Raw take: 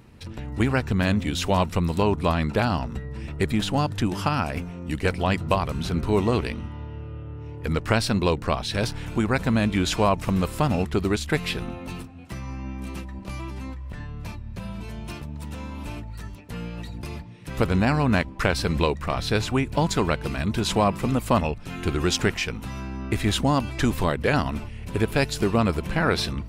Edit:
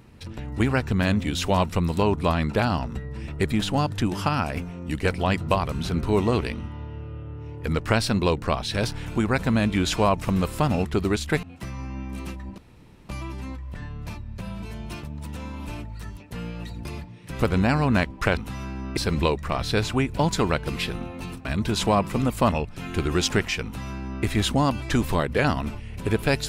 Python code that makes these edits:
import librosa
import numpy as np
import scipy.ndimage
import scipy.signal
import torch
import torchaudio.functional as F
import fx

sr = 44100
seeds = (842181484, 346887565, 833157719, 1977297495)

y = fx.edit(x, sr, fx.move(start_s=11.43, length_s=0.69, to_s=20.34),
    fx.insert_room_tone(at_s=13.27, length_s=0.51),
    fx.duplicate(start_s=22.53, length_s=0.6, to_s=18.55), tone=tone)